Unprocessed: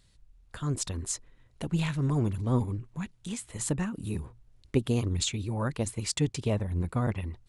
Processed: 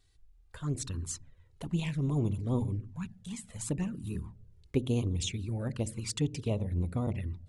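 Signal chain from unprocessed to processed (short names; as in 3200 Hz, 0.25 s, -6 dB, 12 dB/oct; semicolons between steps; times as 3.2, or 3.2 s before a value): on a send at -11 dB: running mean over 39 samples + reverb RT60 0.75 s, pre-delay 10 ms; on the sum: envelope flanger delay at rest 2.7 ms, full sweep at -24.5 dBFS; gain -2.5 dB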